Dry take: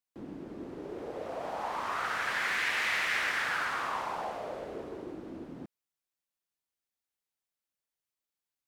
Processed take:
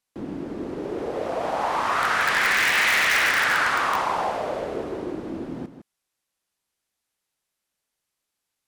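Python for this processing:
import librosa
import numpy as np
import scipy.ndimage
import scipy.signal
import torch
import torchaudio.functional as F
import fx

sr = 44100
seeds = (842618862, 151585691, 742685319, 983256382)

p1 = fx.brickwall_lowpass(x, sr, high_hz=13000.0)
p2 = p1 + 10.0 ** (-11.0 / 20.0) * np.pad(p1, (int(159 * sr / 1000.0), 0))[:len(p1)]
p3 = (np.mod(10.0 ** (22.5 / 20.0) * p2 + 1.0, 2.0) - 1.0) / 10.0 ** (22.5 / 20.0)
p4 = p2 + (p3 * 10.0 ** (-4.5 / 20.0))
y = p4 * 10.0 ** (6.5 / 20.0)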